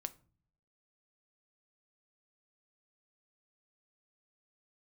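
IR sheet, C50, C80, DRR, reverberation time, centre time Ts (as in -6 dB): 20.0 dB, 25.0 dB, 11.0 dB, 0.45 s, 3 ms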